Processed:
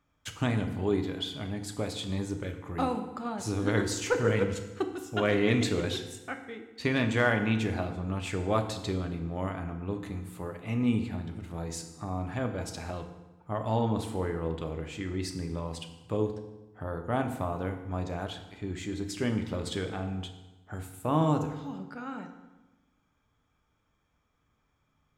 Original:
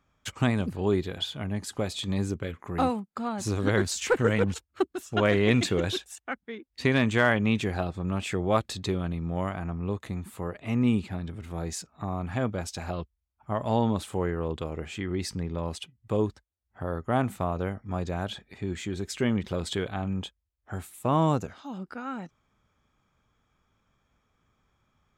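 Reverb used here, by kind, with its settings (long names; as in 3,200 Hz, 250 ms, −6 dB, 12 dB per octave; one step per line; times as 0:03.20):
feedback delay network reverb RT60 1.1 s, low-frequency decay 1.2×, high-frequency decay 0.8×, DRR 5 dB
level −4 dB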